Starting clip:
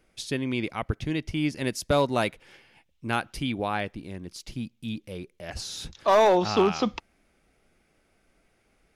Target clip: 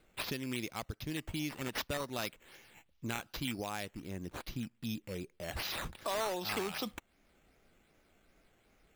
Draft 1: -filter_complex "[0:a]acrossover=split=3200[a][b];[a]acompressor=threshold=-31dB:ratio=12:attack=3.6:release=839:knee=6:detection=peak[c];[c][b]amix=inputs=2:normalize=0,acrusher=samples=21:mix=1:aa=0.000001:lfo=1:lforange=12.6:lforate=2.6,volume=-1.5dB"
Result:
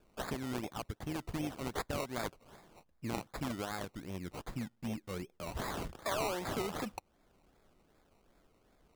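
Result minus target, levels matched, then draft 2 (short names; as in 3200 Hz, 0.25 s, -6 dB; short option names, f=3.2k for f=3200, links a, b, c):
decimation with a swept rate: distortion +5 dB
-filter_complex "[0:a]acrossover=split=3200[a][b];[a]acompressor=threshold=-31dB:ratio=12:attack=3.6:release=839:knee=6:detection=peak[c];[c][b]amix=inputs=2:normalize=0,acrusher=samples=7:mix=1:aa=0.000001:lfo=1:lforange=4.2:lforate=2.6,volume=-1.5dB"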